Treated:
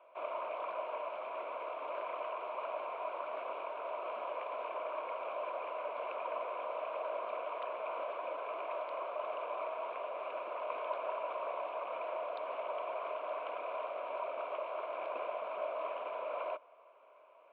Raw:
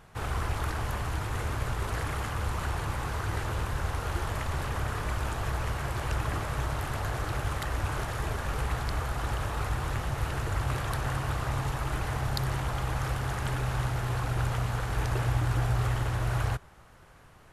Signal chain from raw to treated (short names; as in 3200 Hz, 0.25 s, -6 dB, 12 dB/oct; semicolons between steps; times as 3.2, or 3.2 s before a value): vowel filter a; mistuned SSB -110 Hz 530–3500 Hz; gain +6.5 dB